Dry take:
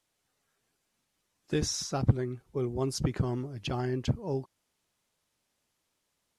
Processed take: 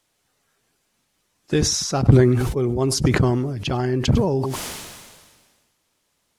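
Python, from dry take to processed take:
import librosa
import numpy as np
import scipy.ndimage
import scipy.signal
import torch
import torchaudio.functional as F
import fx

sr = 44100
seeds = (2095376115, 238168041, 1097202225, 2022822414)

p1 = x + fx.echo_single(x, sr, ms=100, db=-22.5, dry=0)
p2 = fx.sustainer(p1, sr, db_per_s=36.0)
y = p2 * 10.0 ** (9.0 / 20.0)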